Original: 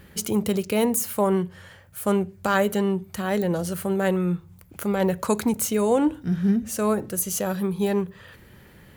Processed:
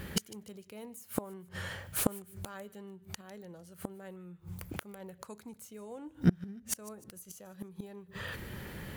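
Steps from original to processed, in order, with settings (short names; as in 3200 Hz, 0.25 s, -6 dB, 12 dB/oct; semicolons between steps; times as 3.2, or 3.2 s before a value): flipped gate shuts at -19 dBFS, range -31 dB; thin delay 0.151 s, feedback 39%, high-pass 1600 Hz, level -19.5 dB; slew limiter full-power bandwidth 200 Hz; gain +6 dB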